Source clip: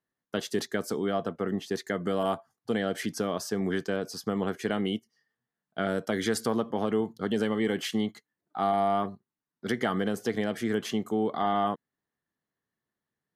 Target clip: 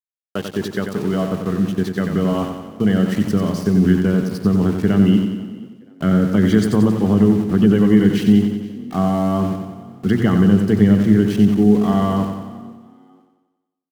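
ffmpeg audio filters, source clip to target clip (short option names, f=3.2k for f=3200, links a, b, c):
-filter_complex "[0:a]afftfilt=real='re*gte(hypot(re,im),0.01)':imag='im*gte(hypot(re,im),0.01)':win_size=1024:overlap=0.75,aemphasis=mode=reproduction:type=cd,bandreject=f=60:t=h:w=6,bandreject=f=120:t=h:w=6,bandreject=f=180:t=h:w=6,bandreject=f=240:t=h:w=6,bandreject=f=300:t=h:w=6,bandreject=f=360:t=h:w=6,asubboost=boost=7:cutoff=240,aeval=exprs='val(0)*gte(abs(val(0)),0.0126)':c=same,asplit=3[a][b][c];[b]adelay=465,afreqshift=38,volume=-23.5dB[d];[c]adelay=930,afreqshift=76,volume=-32.9dB[e];[a][d][e]amix=inputs=3:normalize=0,asetrate=42336,aresample=44100,asplit=2[f][g];[g]aecho=0:1:91|182|273|364|455|546|637|728:0.473|0.274|0.159|0.0923|0.0535|0.0311|0.018|0.0104[h];[f][h]amix=inputs=2:normalize=0,volume=6dB"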